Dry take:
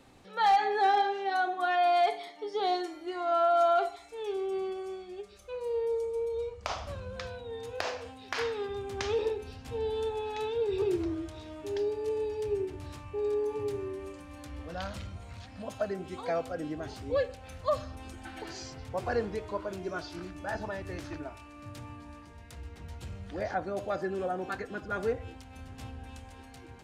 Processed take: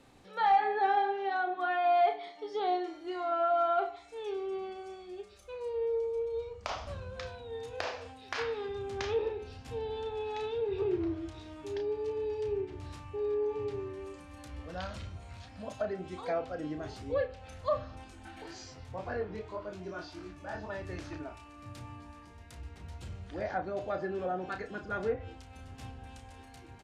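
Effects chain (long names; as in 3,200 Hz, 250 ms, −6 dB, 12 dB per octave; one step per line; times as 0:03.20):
treble cut that deepens with the level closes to 2,600 Hz, closed at −26 dBFS
0:18.04–0:20.70: chorus effect 1.8 Hz, delay 19.5 ms, depth 4.7 ms
double-tracking delay 33 ms −8 dB
level −2.5 dB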